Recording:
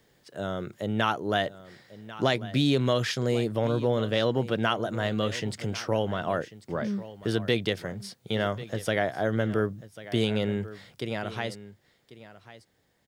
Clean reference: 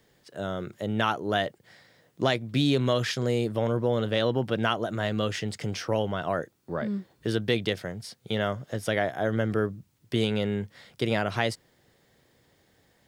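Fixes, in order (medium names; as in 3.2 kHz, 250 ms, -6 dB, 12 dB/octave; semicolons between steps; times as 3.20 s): inverse comb 1093 ms -16.5 dB; trim 0 dB, from 11.00 s +6 dB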